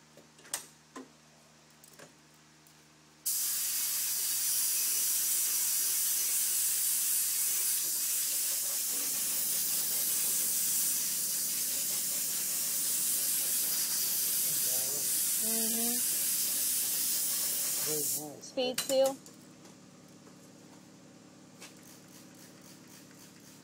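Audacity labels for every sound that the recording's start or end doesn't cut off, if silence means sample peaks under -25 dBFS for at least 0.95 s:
3.270000	19.100000	sound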